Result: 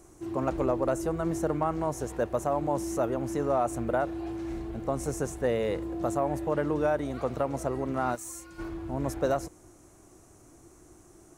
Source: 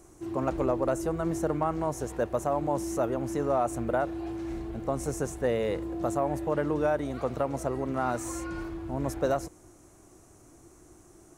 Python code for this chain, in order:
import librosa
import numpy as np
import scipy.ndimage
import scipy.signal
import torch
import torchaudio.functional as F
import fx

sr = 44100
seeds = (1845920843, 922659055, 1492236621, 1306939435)

y = fx.pre_emphasis(x, sr, coefficient=0.8, at=(8.14, 8.58), fade=0.02)